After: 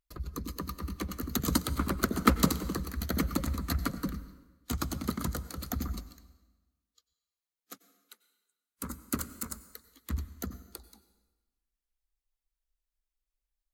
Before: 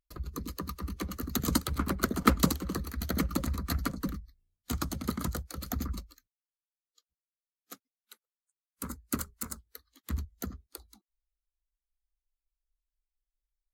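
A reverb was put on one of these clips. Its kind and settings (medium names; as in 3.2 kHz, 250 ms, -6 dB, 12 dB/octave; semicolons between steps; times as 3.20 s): plate-style reverb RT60 1.2 s, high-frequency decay 0.85×, pre-delay 80 ms, DRR 14.5 dB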